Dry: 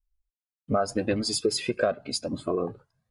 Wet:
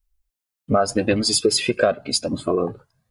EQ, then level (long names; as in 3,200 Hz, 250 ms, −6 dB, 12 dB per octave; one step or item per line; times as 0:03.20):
high-shelf EQ 6,500 Hz +4.5 dB
dynamic equaliser 3,000 Hz, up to +4 dB, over −46 dBFS, Q 2.3
+6.5 dB